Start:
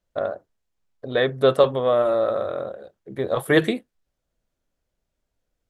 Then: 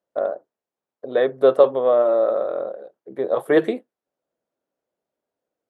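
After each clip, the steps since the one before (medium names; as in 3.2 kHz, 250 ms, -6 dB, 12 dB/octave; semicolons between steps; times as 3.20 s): high-pass 430 Hz 12 dB/octave; tilt shelf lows +9.5 dB, about 1.2 kHz; trim -1.5 dB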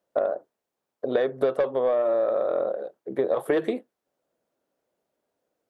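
saturation -8.5 dBFS, distortion -16 dB; compression 12:1, threshold -25 dBFS, peak gain reduction 13.5 dB; trim +5 dB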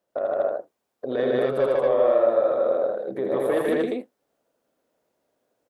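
peak limiter -18.5 dBFS, peak gain reduction 7 dB; on a send: loudspeakers at several distances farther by 28 m -5 dB, 52 m 0 dB, 80 m 0 dB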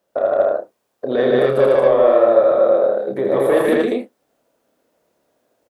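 doubling 29 ms -6 dB; trim +7 dB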